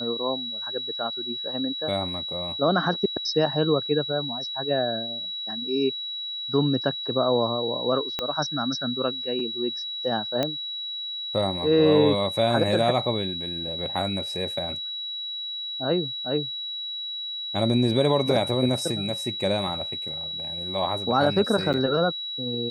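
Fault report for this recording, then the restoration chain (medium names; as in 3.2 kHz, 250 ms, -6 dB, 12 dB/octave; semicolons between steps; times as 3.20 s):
whine 3.9 kHz -30 dBFS
8.19 s: pop -12 dBFS
10.43 s: pop -11 dBFS
21.73–21.74 s: dropout 8 ms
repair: de-click; band-stop 3.9 kHz, Q 30; interpolate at 21.73 s, 8 ms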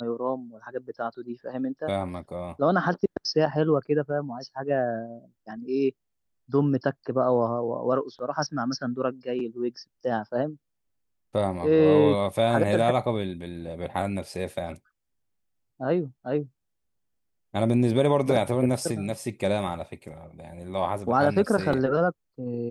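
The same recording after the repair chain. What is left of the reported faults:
8.19 s: pop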